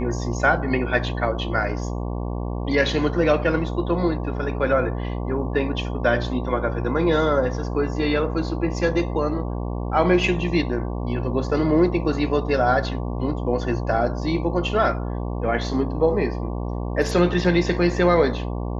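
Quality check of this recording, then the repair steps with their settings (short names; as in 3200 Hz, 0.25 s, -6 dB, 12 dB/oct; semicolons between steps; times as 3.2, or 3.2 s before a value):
buzz 60 Hz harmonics 19 -27 dBFS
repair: de-hum 60 Hz, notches 19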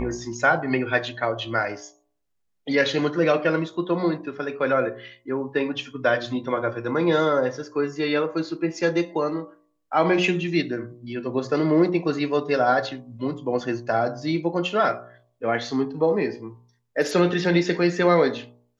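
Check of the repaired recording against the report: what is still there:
none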